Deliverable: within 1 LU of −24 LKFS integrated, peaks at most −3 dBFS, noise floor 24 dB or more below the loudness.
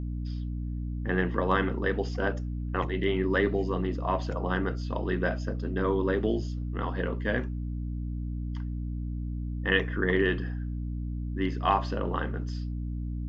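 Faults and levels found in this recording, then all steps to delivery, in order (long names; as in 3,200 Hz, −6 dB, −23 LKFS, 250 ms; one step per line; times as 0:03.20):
mains hum 60 Hz; hum harmonics up to 300 Hz; level of the hum −30 dBFS; integrated loudness −30.0 LKFS; sample peak −10.0 dBFS; target loudness −24.0 LKFS
→ mains-hum notches 60/120/180/240/300 Hz
level +6 dB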